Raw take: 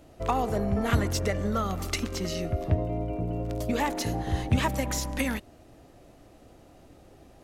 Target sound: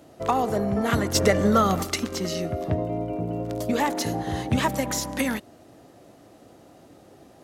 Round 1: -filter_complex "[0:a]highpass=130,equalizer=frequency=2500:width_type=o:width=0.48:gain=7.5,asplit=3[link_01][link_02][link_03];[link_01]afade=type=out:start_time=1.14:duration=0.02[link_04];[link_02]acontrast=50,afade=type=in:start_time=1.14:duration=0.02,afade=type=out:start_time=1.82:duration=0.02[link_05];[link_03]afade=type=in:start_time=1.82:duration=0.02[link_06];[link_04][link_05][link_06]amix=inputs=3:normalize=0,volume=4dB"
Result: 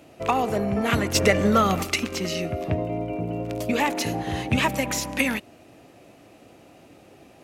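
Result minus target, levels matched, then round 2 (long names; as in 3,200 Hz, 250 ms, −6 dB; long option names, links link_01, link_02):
2,000 Hz band +4.0 dB
-filter_complex "[0:a]highpass=130,equalizer=frequency=2500:width_type=o:width=0.48:gain=-3.5,asplit=3[link_01][link_02][link_03];[link_01]afade=type=out:start_time=1.14:duration=0.02[link_04];[link_02]acontrast=50,afade=type=in:start_time=1.14:duration=0.02,afade=type=out:start_time=1.82:duration=0.02[link_05];[link_03]afade=type=in:start_time=1.82:duration=0.02[link_06];[link_04][link_05][link_06]amix=inputs=3:normalize=0,volume=4dB"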